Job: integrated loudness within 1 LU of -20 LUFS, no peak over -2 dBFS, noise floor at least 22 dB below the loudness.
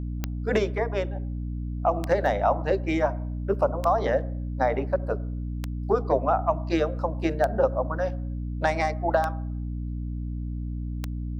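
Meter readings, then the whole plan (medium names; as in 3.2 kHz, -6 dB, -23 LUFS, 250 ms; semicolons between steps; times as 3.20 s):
clicks found 7; hum 60 Hz; highest harmonic 300 Hz; hum level -28 dBFS; loudness -27.0 LUFS; peak level -9.5 dBFS; loudness target -20.0 LUFS
-> de-click; hum notches 60/120/180/240/300 Hz; trim +7 dB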